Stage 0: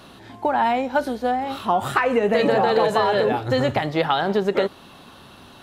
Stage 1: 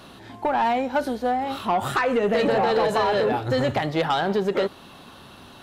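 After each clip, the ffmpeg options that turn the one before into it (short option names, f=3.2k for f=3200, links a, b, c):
-af "asoftclip=type=tanh:threshold=-14.5dB"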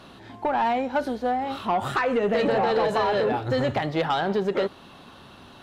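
-af "highshelf=f=8.8k:g=-10.5,volume=-1.5dB"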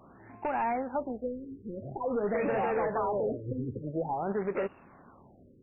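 -af "acrusher=bits=2:mode=log:mix=0:aa=0.000001,afftfilt=real='re*lt(b*sr/1024,490*pow(2900/490,0.5+0.5*sin(2*PI*0.48*pts/sr)))':imag='im*lt(b*sr/1024,490*pow(2900/490,0.5+0.5*sin(2*PI*0.48*pts/sr)))':win_size=1024:overlap=0.75,volume=-7.5dB"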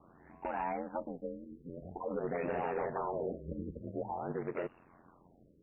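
-af "aeval=exprs='val(0)*sin(2*PI*44*n/s)':c=same,volume=-3.5dB"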